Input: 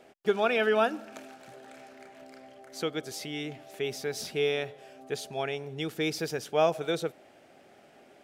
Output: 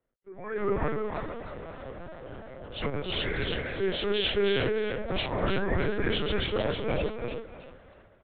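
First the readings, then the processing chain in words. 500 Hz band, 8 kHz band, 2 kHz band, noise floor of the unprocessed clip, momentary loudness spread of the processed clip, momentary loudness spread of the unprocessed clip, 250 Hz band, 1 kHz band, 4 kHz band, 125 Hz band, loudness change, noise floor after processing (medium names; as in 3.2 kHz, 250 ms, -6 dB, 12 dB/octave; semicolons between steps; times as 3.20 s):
0.0 dB, under -35 dB, +1.5 dB, -57 dBFS, 16 LU, 24 LU, +3.0 dB, -2.0 dB, +5.0 dB, +7.5 dB, +0.5 dB, -57 dBFS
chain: frequency axis rescaled in octaves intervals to 84%; compression 6:1, threshold -38 dBFS, peak gain reduction 16.5 dB; transient shaper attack -5 dB, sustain +5 dB; level rider gain up to 14 dB; echo from a far wall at 64 m, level -13 dB; overload inside the chain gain 23.5 dB; painted sound rise, 4.92–5.78 s, 530–2000 Hz -37 dBFS; comb of notches 280 Hz; frequency-shifting echo 313 ms, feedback 35%, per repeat +36 Hz, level -3 dB; LPC vocoder at 8 kHz pitch kept; three bands expanded up and down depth 70%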